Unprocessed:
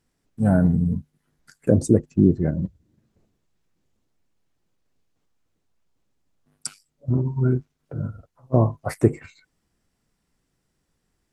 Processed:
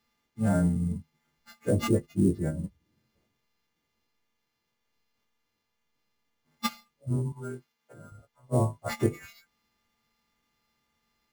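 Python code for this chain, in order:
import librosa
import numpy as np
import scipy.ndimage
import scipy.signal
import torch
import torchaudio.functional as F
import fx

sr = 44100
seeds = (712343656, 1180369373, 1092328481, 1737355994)

y = fx.freq_snap(x, sr, grid_st=2)
y = fx.highpass(y, sr, hz=710.0, slope=6, at=(7.32, 8.12))
y = fx.sample_hold(y, sr, seeds[0], rate_hz=9100.0, jitter_pct=0)
y = y * librosa.db_to_amplitude(-6.0)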